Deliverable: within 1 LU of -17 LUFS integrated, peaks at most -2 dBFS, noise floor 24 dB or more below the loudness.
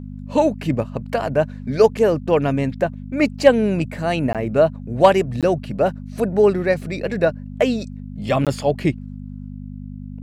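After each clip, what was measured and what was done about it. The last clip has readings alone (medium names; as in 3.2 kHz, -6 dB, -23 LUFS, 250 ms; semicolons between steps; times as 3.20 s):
dropouts 3; longest dropout 17 ms; hum 50 Hz; highest harmonic 250 Hz; hum level -30 dBFS; loudness -19.5 LUFS; peak level -2.0 dBFS; loudness target -17.0 LUFS
-> interpolate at 4.33/5.41/8.45 s, 17 ms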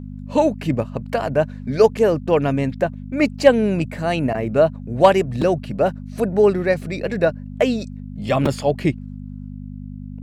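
dropouts 0; hum 50 Hz; highest harmonic 250 Hz; hum level -30 dBFS
-> de-hum 50 Hz, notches 5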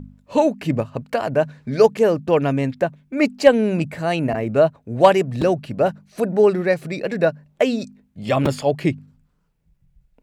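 hum not found; loudness -20.0 LUFS; peak level -1.5 dBFS; loudness target -17.0 LUFS
-> trim +3 dB; peak limiter -2 dBFS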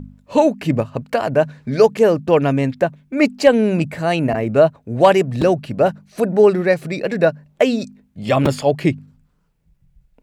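loudness -17.5 LUFS; peak level -2.0 dBFS; noise floor -62 dBFS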